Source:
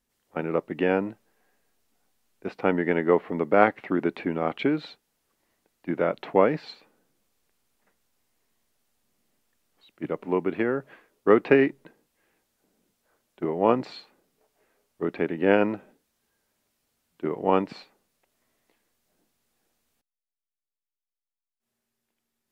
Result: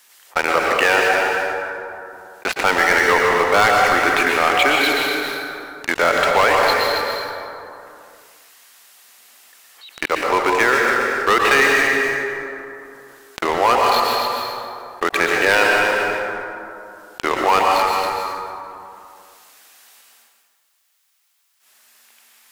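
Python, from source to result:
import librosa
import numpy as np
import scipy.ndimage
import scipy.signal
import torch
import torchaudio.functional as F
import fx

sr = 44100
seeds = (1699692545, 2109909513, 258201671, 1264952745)

y = scipy.signal.sosfilt(scipy.signal.butter(2, 1100.0, 'highpass', fs=sr, output='sos'), x)
y = fx.leveller(y, sr, passes=5)
y = y + 10.0 ** (-10.5 / 20.0) * np.pad(y, (int(275 * sr / 1000.0), 0))[:len(y)]
y = fx.rev_plate(y, sr, seeds[0], rt60_s=1.4, hf_ratio=0.6, predelay_ms=105, drr_db=1.0)
y = fx.env_flatten(y, sr, amount_pct=50)
y = y * 10.0 ** (-1.0 / 20.0)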